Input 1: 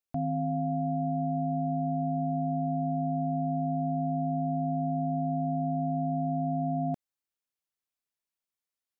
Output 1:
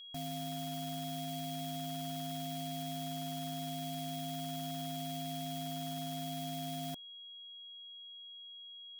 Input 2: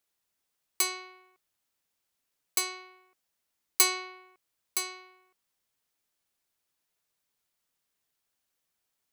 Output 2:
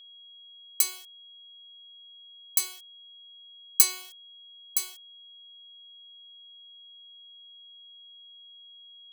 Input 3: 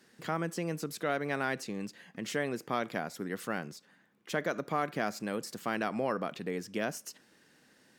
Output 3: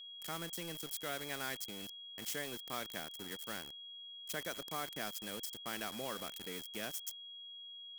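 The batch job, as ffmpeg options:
ffmpeg -i in.wav -af "aeval=exprs='val(0)*gte(abs(val(0)),0.0119)':channel_layout=same,crystalizer=i=4.5:c=0,aeval=exprs='val(0)+0.0158*sin(2*PI*3300*n/s)':channel_layout=same,volume=-12dB" out.wav

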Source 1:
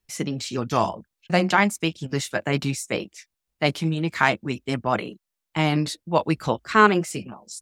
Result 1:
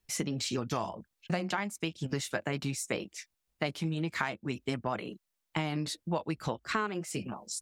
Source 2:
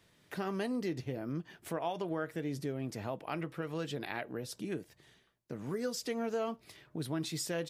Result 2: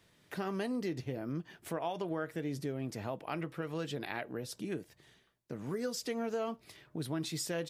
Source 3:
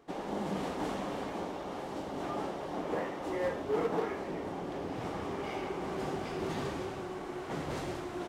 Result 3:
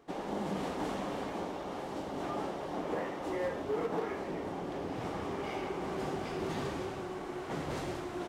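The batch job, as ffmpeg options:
ffmpeg -i in.wav -af "acompressor=threshold=-29dB:ratio=8" out.wav

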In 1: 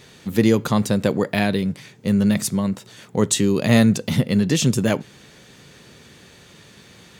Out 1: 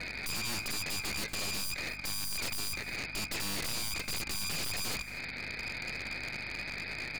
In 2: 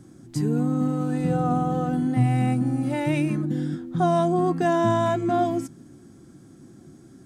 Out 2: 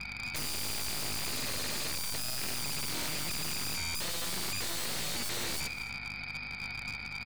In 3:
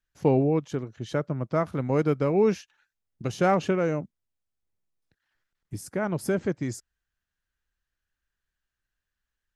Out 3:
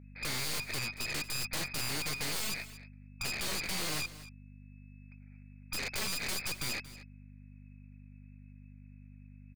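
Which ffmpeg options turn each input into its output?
ffmpeg -i in.wav -af "acrusher=samples=29:mix=1:aa=0.000001,acompressor=threshold=-25dB:ratio=6,alimiter=limit=-23dB:level=0:latency=1:release=461,lowpass=frequency=2200:width_type=q:width=0.5098,lowpass=frequency=2200:width_type=q:width=0.6013,lowpass=frequency=2200:width_type=q:width=0.9,lowpass=frequency=2200:width_type=q:width=2.563,afreqshift=-2600,aeval=exprs='0.119*(cos(1*acos(clip(val(0)/0.119,-1,1)))-cos(1*PI/2))+0.0237*(cos(4*acos(clip(val(0)/0.119,-1,1)))-cos(4*PI/2))+0.0422*(cos(8*acos(clip(val(0)/0.119,-1,1)))-cos(8*PI/2))':channel_layout=same,asoftclip=type=hard:threshold=-35.5dB,aeval=exprs='val(0)+0.002*(sin(2*PI*50*n/s)+sin(2*PI*2*50*n/s)/2+sin(2*PI*3*50*n/s)/3+sin(2*PI*4*50*n/s)/4+sin(2*PI*5*50*n/s)/5)':channel_layout=same,lowshelf=frequency=62:gain=-8.5,aecho=1:1:232:0.15,volume=7dB" out.wav

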